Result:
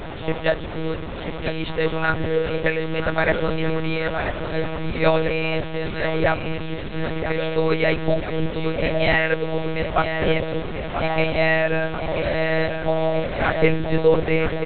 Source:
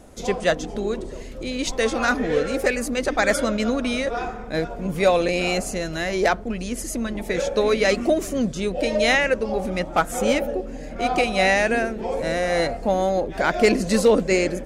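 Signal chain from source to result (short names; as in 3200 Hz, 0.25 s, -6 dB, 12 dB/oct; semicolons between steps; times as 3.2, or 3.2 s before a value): delta modulation 64 kbps, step -25 dBFS; on a send: feedback echo 0.985 s, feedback 49%, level -8.5 dB; on the sum: monotone LPC vocoder at 8 kHz 160 Hz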